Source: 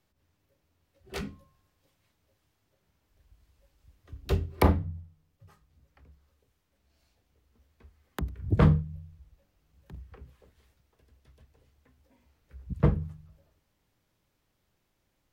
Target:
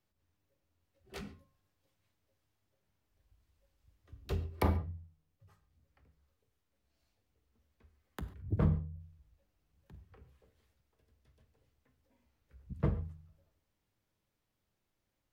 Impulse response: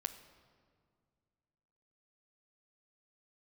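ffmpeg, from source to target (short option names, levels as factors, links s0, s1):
-filter_complex "[0:a]asplit=3[s0][s1][s2];[s0]afade=t=out:st=8.41:d=0.02[s3];[s1]equalizer=f=4100:w=0.32:g=-9.5,afade=t=in:st=8.41:d=0.02,afade=t=out:st=8.99:d=0.02[s4];[s2]afade=t=in:st=8.99:d=0.02[s5];[s3][s4][s5]amix=inputs=3:normalize=0[s6];[1:a]atrim=start_sample=2205,atrim=end_sample=6615[s7];[s6][s7]afir=irnorm=-1:irlink=0,volume=0.422"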